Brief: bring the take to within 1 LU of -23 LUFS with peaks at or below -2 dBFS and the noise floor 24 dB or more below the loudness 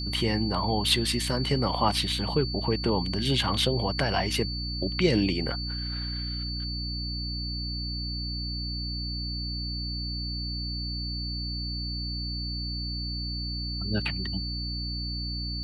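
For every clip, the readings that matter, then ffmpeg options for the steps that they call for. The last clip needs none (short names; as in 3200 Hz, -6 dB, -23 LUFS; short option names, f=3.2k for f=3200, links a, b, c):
hum 60 Hz; harmonics up to 300 Hz; hum level -31 dBFS; steady tone 4500 Hz; tone level -34 dBFS; loudness -29.0 LUFS; peak -8.5 dBFS; loudness target -23.0 LUFS
-> -af "bandreject=f=60:t=h:w=4,bandreject=f=120:t=h:w=4,bandreject=f=180:t=h:w=4,bandreject=f=240:t=h:w=4,bandreject=f=300:t=h:w=4"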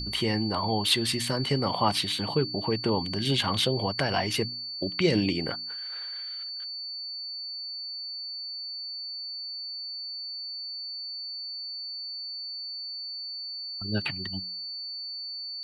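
hum none; steady tone 4500 Hz; tone level -34 dBFS
-> -af "bandreject=f=4.5k:w=30"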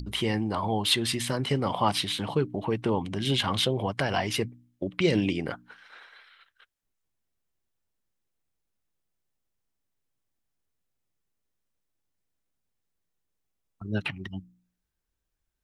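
steady tone none; loudness -28.0 LUFS; peak -9.0 dBFS; loudness target -23.0 LUFS
-> -af "volume=5dB"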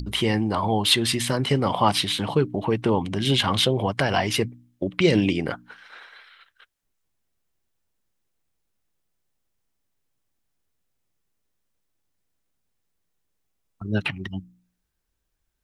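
loudness -23.0 LUFS; peak -4.0 dBFS; noise floor -77 dBFS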